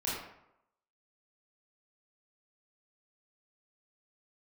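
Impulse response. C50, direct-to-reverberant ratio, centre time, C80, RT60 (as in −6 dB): 0.0 dB, −8.0 dB, 67 ms, 3.5 dB, 0.80 s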